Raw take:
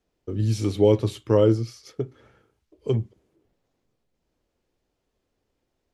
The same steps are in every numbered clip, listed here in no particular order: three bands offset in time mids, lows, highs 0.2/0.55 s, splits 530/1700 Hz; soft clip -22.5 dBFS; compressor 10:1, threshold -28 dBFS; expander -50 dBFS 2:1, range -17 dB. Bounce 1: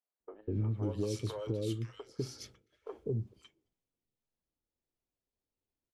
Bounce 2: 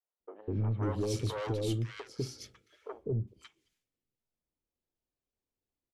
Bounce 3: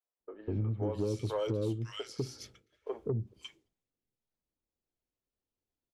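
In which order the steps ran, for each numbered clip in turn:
compressor > soft clip > three bands offset in time > expander; soft clip > expander > compressor > three bands offset in time; three bands offset in time > expander > compressor > soft clip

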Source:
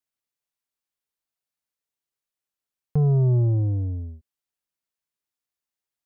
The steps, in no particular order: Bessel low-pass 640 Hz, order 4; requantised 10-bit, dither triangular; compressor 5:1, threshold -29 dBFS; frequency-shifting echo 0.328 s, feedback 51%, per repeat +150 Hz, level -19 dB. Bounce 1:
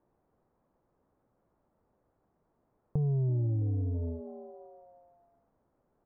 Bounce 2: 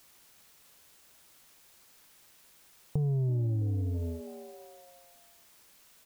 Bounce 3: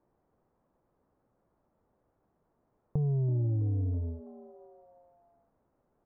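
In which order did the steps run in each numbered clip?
requantised > frequency-shifting echo > compressor > Bessel low-pass; frequency-shifting echo > Bessel low-pass > requantised > compressor; requantised > Bessel low-pass > compressor > frequency-shifting echo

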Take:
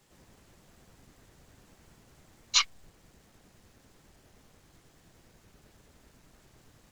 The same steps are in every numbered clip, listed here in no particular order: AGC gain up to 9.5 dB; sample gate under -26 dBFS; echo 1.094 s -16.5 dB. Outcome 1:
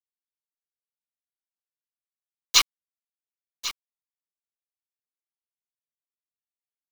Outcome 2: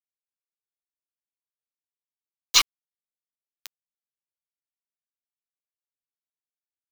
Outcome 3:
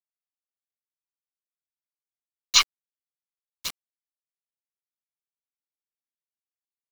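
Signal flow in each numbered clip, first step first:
sample gate > echo > AGC; echo > sample gate > AGC; echo > AGC > sample gate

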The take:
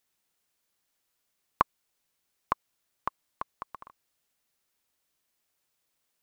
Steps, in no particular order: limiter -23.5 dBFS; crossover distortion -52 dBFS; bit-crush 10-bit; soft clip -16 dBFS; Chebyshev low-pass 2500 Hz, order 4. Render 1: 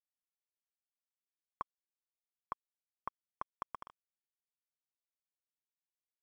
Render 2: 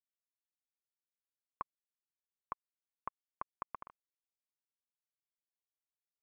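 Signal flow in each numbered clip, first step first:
bit-crush > Chebyshev low-pass > crossover distortion > limiter > soft clip; bit-crush > crossover distortion > limiter > soft clip > Chebyshev low-pass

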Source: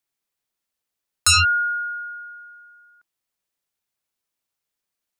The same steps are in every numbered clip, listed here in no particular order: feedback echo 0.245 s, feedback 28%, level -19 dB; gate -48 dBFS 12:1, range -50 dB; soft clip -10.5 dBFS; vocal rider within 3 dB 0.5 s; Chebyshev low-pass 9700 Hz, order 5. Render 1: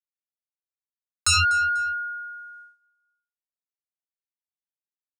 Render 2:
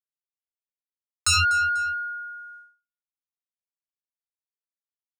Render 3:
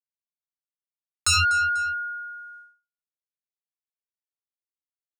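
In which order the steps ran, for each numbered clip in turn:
Chebyshev low-pass > gate > vocal rider > feedback echo > soft clip; Chebyshev low-pass > soft clip > feedback echo > gate > vocal rider; feedback echo > gate > Chebyshev low-pass > soft clip > vocal rider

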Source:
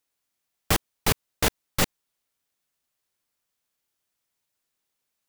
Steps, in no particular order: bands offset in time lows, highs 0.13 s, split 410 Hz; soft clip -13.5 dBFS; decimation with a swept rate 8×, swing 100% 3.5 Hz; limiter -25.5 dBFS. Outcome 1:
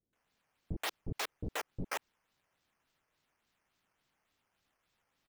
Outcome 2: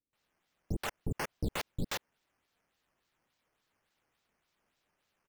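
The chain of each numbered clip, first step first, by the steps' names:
soft clip > limiter > decimation with a swept rate > bands offset in time; soft clip > bands offset in time > limiter > decimation with a swept rate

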